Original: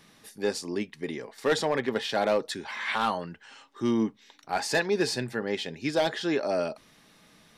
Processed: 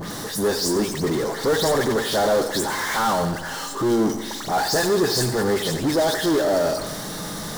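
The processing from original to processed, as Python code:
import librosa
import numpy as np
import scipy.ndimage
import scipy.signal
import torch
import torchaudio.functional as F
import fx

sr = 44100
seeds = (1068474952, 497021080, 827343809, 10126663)

p1 = fx.spec_delay(x, sr, highs='late', ms=103)
p2 = fx.power_curve(p1, sr, exponent=0.35)
p3 = fx.peak_eq(p2, sr, hz=2500.0, db=-15.0, octaves=0.7)
y = p3 + fx.echo_feedback(p3, sr, ms=90, feedback_pct=59, wet_db=-11.5, dry=0)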